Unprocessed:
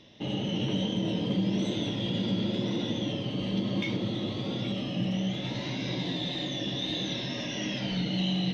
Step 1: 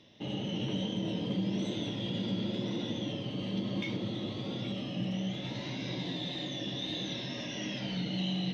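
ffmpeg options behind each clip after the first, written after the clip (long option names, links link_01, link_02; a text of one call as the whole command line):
ffmpeg -i in.wav -af "highpass=54,volume=-4.5dB" out.wav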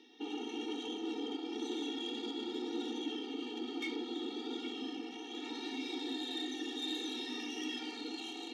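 ffmpeg -i in.wav -af "asoftclip=type=tanh:threshold=-32.5dB,afftfilt=real='re*eq(mod(floor(b*sr/1024/240),2),1)':imag='im*eq(mod(floor(b*sr/1024/240),2),1)':win_size=1024:overlap=0.75,volume=3dB" out.wav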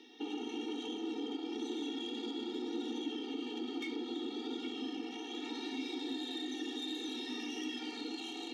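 ffmpeg -i in.wav -filter_complex "[0:a]acrossover=split=260[link_01][link_02];[link_02]acompressor=threshold=-45dB:ratio=3[link_03];[link_01][link_03]amix=inputs=2:normalize=0,volume=3.5dB" out.wav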